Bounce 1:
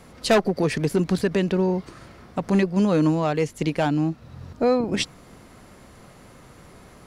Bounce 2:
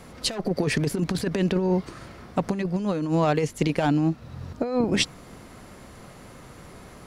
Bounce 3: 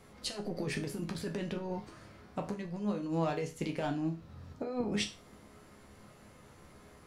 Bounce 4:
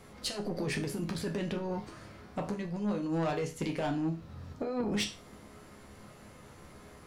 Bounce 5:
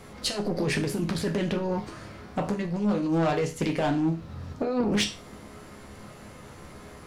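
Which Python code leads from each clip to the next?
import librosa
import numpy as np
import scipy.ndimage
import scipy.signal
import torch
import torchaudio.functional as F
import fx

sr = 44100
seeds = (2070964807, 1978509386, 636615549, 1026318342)

y1 = fx.over_compress(x, sr, threshold_db=-22.0, ratio=-0.5)
y2 = fx.resonator_bank(y1, sr, root=37, chord='minor', decay_s=0.32)
y3 = 10.0 ** (-29.0 / 20.0) * np.tanh(y2 / 10.0 ** (-29.0 / 20.0))
y3 = y3 * librosa.db_to_amplitude(4.0)
y4 = fx.doppler_dist(y3, sr, depth_ms=0.19)
y4 = y4 * librosa.db_to_amplitude(7.0)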